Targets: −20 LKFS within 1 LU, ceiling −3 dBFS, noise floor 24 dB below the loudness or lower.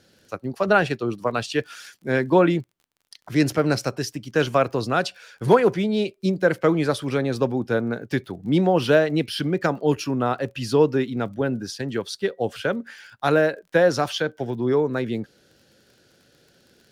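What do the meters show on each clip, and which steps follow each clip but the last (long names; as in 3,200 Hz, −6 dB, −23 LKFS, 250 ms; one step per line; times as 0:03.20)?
crackle rate 31 per second; integrated loudness −23.0 LKFS; sample peak −4.0 dBFS; target loudness −20.0 LKFS
→ click removal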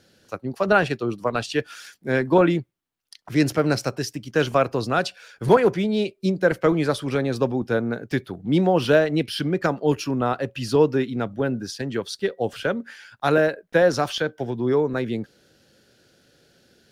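crackle rate 0.12 per second; integrated loudness −23.0 LKFS; sample peak −4.0 dBFS; target loudness −20.0 LKFS
→ level +3 dB
brickwall limiter −3 dBFS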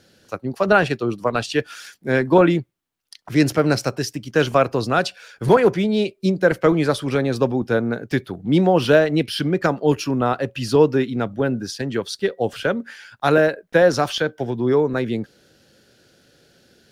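integrated loudness −20.0 LKFS; sample peak −3.0 dBFS; background noise floor −62 dBFS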